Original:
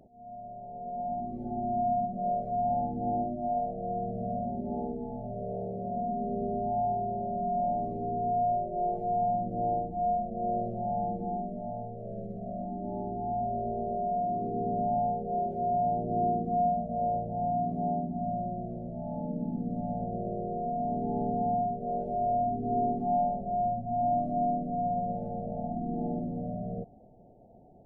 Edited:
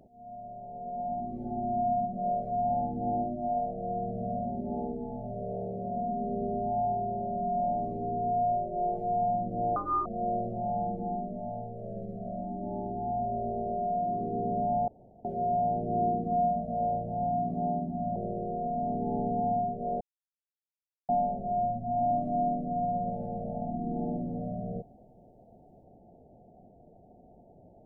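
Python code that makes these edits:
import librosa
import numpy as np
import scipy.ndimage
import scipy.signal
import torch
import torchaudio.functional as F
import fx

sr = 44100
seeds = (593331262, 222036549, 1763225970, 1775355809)

y = fx.edit(x, sr, fx.speed_span(start_s=9.76, length_s=0.51, speed=1.71),
    fx.room_tone_fill(start_s=15.09, length_s=0.37),
    fx.cut(start_s=18.37, length_s=1.81),
    fx.silence(start_s=22.03, length_s=1.08), tone=tone)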